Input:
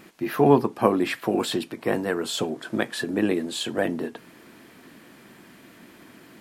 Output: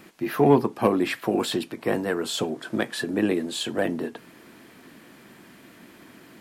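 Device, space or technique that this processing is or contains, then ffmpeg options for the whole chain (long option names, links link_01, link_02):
one-band saturation: -filter_complex "[0:a]acrossover=split=540|2500[link_01][link_02][link_03];[link_02]asoftclip=type=tanh:threshold=-17dB[link_04];[link_01][link_04][link_03]amix=inputs=3:normalize=0"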